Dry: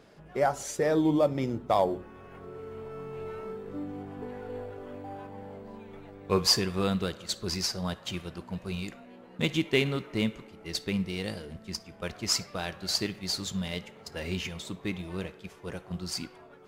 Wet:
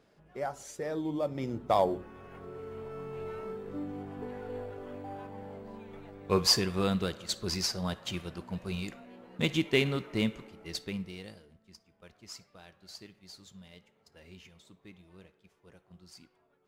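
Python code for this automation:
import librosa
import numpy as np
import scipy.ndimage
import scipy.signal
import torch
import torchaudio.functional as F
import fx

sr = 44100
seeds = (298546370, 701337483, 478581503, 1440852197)

y = fx.gain(x, sr, db=fx.line((1.11, -9.5), (1.71, -1.0), (10.48, -1.0), (11.15, -9.5), (11.58, -19.0)))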